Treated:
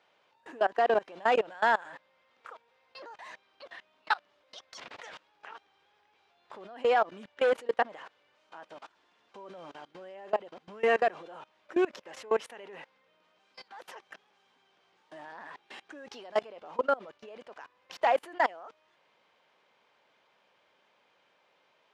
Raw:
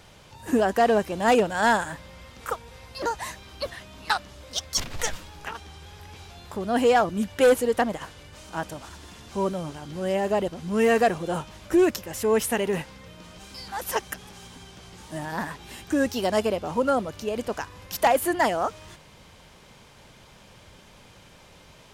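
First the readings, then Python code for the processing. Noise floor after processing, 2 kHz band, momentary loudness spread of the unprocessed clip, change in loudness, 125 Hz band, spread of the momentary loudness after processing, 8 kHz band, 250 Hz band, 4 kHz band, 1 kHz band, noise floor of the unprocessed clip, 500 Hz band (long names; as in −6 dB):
−69 dBFS, −5.5 dB, 21 LU, −4.5 dB, below −20 dB, 22 LU, below −20 dB, −15.5 dB, −11.0 dB, −5.5 dB, −52 dBFS, −7.0 dB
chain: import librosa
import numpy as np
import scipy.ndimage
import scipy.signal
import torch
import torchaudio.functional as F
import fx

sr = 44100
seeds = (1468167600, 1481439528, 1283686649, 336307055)

y = fx.bandpass_edges(x, sr, low_hz=480.0, high_hz=3100.0)
y = fx.level_steps(y, sr, step_db=23)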